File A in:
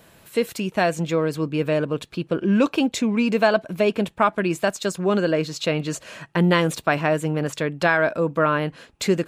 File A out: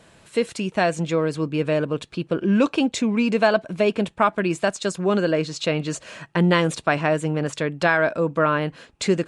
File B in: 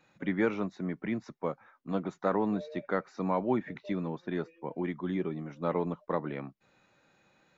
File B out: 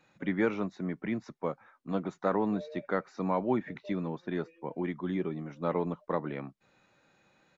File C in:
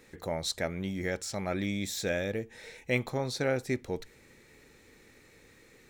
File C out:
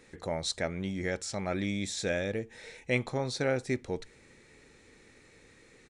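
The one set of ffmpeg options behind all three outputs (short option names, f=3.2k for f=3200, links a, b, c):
-af "aresample=22050,aresample=44100"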